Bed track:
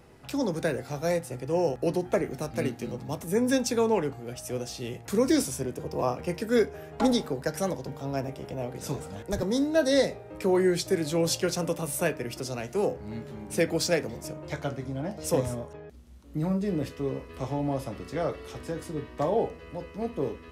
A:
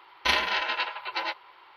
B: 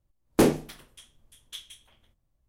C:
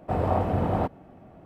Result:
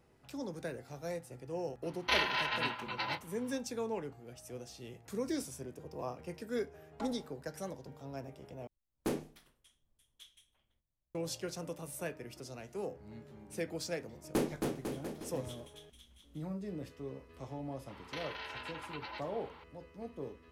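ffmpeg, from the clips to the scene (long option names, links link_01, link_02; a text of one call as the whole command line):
ffmpeg -i bed.wav -i cue0.wav -i cue1.wav -filter_complex "[1:a]asplit=2[link_01][link_02];[2:a]asplit=2[link_03][link_04];[0:a]volume=-13dB[link_05];[link_01]asplit=2[link_06][link_07];[link_07]adelay=27,volume=-7dB[link_08];[link_06][link_08]amix=inputs=2:normalize=0[link_09];[link_04]aecho=1:1:270|499.5|694.6|860.4|1001|1121|1223:0.631|0.398|0.251|0.158|0.1|0.0631|0.0398[link_10];[link_02]acompressor=threshold=-39dB:ratio=6:attack=3.2:release=140:knee=1:detection=peak[link_11];[link_05]asplit=2[link_12][link_13];[link_12]atrim=end=8.674[link_14];[link_03]atrim=end=2.48,asetpts=PTS-STARTPTS,volume=-15.5dB[link_15];[link_13]atrim=start=11.146[link_16];[link_09]atrim=end=1.76,asetpts=PTS-STARTPTS,volume=-7dB,afade=type=in:duration=0.004:curve=hsin,afade=type=out:start_time=1.756:duration=0.004:curve=hsin,adelay=1830[link_17];[link_10]atrim=end=2.48,asetpts=PTS-STARTPTS,volume=-12.5dB,afade=type=in:duration=0.004:curve=hsin,afade=type=out:start_time=2.476:duration=0.004:curve=hsin,adelay=615636S[link_18];[link_11]atrim=end=1.76,asetpts=PTS-STARTPTS,volume=-3dB,afade=type=in:duration=0.004:curve=hsin,afade=type=out:start_time=1.756:duration=0.004:curve=hsin,adelay=17880[link_19];[link_14][link_15]acrossfade=duration=0.004:curve1=hsin:curve2=hsin[link_20];[link_20][link_16]acrossfade=duration=0.004:curve1=hsin:curve2=hsin[link_21];[link_21][link_17][link_18][link_19]amix=inputs=4:normalize=0" out.wav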